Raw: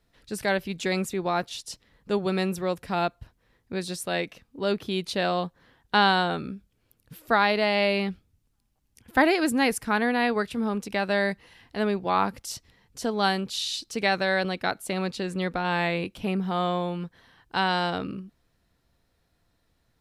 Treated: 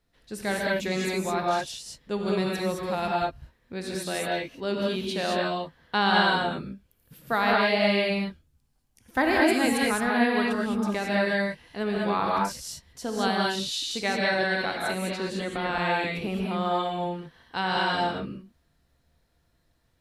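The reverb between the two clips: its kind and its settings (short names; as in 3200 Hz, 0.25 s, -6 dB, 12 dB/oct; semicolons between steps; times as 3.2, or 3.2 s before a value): non-linear reverb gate 0.24 s rising, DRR -3 dB; gain -4.5 dB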